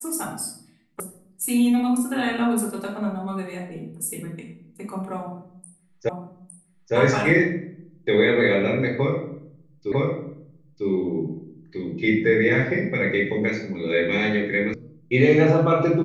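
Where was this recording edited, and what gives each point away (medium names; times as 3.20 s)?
1.00 s: sound stops dead
6.09 s: repeat of the last 0.86 s
9.92 s: repeat of the last 0.95 s
14.74 s: sound stops dead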